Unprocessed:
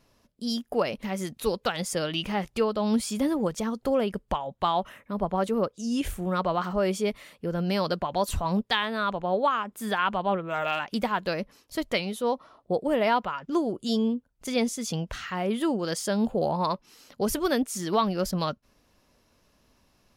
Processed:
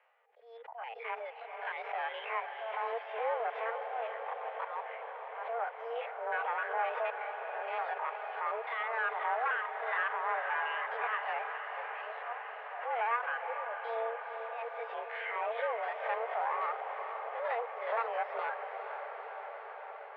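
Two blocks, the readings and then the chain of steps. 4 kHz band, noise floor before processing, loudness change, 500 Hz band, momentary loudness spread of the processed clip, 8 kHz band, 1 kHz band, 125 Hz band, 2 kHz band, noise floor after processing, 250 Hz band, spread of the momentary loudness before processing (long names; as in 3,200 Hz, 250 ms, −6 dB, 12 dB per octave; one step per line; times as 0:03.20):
−17.5 dB, −67 dBFS, −8.0 dB, −10.0 dB, 9 LU, below −40 dB, −4.0 dB, below −40 dB, −0.5 dB, −48 dBFS, below −40 dB, 6 LU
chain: spectrum averaged block by block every 50 ms
notch filter 1,100 Hz, Q 9.2
de-essing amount 90%
spectral tilt +3 dB per octave
in parallel at +1 dB: brickwall limiter −24 dBFS, peak gain reduction 11 dB
on the sum: volume swells 334 ms
reverb reduction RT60 0.62 s
asymmetric clip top −31 dBFS
feedback delay with all-pass diffusion 467 ms, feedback 77%, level −7.5 dB
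single-sideband voice off tune +230 Hz 270–2,200 Hz
background raised ahead of every attack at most 87 dB per second
level −4.5 dB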